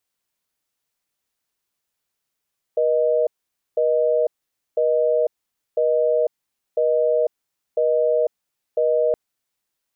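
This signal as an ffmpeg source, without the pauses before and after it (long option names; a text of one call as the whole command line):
ffmpeg -f lavfi -i "aevalsrc='0.119*(sin(2*PI*480*t)+sin(2*PI*620*t))*clip(min(mod(t,1),0.5-mod(t,1))/0.005,0,1)':duration=6.37:sample_rate=44100" out.wav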